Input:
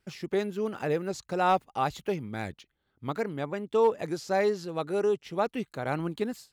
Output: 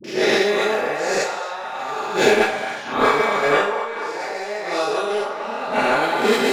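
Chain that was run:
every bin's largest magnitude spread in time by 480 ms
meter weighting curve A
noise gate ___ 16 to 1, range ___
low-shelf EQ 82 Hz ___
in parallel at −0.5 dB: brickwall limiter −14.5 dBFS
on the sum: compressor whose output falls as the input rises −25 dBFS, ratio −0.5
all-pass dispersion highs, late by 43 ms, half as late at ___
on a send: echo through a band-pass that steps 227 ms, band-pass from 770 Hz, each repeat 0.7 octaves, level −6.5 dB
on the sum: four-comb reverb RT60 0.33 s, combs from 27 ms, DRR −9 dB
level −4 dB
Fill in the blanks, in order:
−27 dBFS, −13 dB, +3.5 dB, 470 Hz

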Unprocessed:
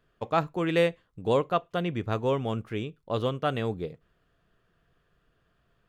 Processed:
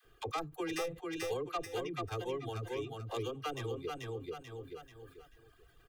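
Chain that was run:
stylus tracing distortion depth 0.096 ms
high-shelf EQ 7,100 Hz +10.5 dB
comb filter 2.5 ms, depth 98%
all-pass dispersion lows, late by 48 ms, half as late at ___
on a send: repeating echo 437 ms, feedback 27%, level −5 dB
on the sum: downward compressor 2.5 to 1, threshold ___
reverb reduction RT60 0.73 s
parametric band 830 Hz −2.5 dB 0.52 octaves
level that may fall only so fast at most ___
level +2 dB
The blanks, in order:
520 Hz, −44 dBFS, 130 dB per second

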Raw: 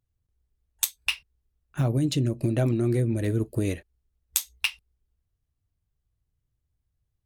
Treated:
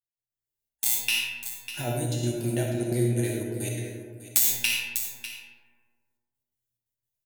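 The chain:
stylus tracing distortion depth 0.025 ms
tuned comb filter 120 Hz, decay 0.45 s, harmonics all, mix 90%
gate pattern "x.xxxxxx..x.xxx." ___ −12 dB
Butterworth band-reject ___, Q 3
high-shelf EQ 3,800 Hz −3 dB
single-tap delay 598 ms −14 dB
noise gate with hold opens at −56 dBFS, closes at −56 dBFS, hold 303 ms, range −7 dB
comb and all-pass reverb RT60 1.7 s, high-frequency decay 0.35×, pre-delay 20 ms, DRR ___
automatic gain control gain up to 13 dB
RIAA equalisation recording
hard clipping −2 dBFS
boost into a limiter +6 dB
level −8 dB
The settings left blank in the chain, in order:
175 BPM, 1,200 Hz, 0.5 dB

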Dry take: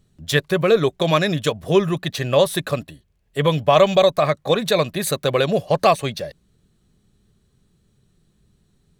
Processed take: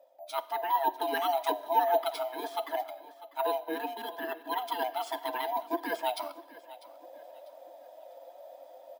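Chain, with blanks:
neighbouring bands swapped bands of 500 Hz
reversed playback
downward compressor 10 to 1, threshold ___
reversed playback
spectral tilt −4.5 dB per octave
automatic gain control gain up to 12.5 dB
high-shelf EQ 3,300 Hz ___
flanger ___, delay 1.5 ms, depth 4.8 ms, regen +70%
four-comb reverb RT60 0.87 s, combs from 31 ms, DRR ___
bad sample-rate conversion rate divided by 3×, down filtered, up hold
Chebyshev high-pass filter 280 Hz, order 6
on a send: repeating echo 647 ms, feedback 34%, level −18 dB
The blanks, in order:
−26 dBFS, +10 dB, 0.67 Hz, 16.5 dB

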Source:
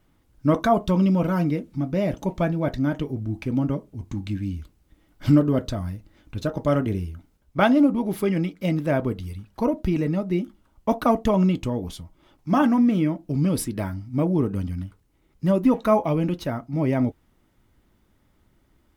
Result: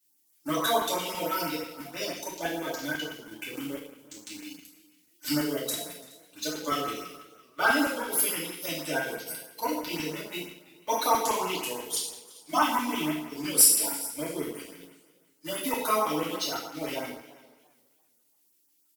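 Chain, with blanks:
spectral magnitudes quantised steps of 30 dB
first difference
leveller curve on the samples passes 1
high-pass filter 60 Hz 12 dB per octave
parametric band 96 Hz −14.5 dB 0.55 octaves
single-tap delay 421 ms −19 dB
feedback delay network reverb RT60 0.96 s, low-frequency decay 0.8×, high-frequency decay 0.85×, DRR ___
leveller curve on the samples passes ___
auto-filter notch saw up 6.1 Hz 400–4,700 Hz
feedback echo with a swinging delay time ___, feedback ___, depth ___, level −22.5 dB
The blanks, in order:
−8.5 dB, 1, 340 ms, 33%, 113 cents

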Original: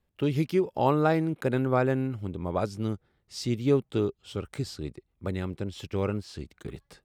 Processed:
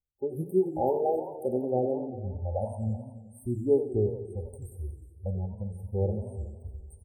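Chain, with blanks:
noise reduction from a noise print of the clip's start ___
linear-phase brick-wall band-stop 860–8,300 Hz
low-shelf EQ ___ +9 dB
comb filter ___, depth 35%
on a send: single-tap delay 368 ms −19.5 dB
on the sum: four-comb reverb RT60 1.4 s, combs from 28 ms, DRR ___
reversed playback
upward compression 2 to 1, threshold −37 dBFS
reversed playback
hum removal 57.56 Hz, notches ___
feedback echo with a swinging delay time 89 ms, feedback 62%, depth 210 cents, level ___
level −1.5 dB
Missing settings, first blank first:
24 dB, 140 Hz, 2.2 ms, 16.5 dB, 12, −11.5 dB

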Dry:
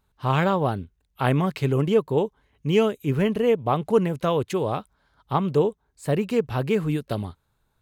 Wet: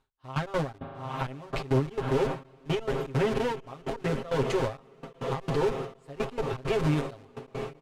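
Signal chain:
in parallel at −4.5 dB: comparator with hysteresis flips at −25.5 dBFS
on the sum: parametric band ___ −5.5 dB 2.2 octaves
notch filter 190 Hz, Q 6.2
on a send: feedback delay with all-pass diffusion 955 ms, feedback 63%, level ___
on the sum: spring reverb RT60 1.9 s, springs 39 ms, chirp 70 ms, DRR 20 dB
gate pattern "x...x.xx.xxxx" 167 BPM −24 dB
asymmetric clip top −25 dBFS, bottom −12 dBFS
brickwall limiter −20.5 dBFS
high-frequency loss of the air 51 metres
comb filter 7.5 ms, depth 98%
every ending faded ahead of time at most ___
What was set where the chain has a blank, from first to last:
120 Hz, −12.5 dB, 180 dB per second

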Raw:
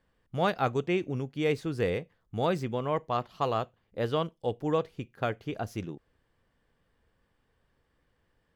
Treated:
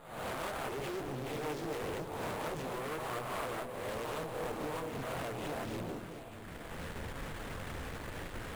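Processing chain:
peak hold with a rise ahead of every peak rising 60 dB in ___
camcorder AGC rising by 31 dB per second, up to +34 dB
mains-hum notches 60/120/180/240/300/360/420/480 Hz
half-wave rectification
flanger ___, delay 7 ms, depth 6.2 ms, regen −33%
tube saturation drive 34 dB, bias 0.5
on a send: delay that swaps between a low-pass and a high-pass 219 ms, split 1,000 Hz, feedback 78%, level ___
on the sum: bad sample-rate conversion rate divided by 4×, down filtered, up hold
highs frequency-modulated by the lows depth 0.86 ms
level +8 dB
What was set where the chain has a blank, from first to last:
0.76 s, 0.97 Hz, −7.5 dB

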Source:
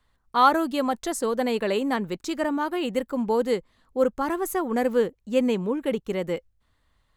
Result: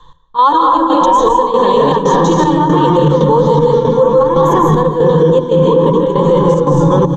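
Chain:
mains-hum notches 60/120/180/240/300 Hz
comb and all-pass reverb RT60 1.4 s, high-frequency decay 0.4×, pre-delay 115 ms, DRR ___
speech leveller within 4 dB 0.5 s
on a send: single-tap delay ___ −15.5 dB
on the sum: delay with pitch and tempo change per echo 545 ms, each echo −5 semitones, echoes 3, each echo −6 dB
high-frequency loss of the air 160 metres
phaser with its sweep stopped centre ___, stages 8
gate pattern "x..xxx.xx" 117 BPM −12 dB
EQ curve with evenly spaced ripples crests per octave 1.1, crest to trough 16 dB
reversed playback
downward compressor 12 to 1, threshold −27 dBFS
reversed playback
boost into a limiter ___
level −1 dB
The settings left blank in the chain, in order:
−1.5 dB, 270 ms, 400 Hz, +27 dB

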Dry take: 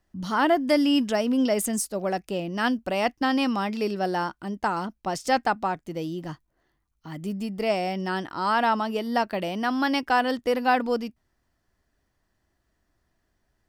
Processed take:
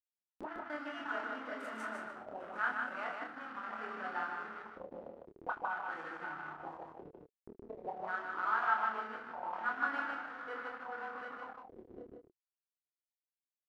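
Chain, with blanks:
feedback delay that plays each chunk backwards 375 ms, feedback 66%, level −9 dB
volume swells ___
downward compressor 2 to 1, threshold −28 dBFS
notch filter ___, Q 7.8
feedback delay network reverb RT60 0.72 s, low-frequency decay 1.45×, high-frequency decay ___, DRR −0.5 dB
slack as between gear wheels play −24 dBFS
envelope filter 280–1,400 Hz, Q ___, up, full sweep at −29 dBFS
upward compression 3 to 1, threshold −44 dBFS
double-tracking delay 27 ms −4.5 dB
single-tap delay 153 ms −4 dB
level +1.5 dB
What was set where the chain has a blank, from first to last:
612 ms, 5,200 Hz, 1×, 5.4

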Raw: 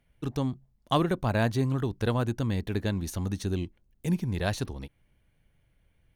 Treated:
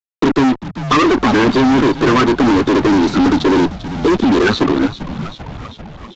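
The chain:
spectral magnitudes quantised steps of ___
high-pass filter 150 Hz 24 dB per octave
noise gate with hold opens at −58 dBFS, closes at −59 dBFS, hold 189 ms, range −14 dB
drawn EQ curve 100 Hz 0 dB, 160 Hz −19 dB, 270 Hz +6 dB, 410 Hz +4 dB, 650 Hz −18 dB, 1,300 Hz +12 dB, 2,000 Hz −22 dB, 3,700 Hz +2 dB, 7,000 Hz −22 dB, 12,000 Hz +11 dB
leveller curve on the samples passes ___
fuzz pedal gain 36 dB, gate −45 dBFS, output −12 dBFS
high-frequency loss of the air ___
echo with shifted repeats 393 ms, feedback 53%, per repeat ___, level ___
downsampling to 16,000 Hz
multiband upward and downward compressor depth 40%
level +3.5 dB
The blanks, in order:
30 dB, 1, 61 metres, −110 Hz, −15 dB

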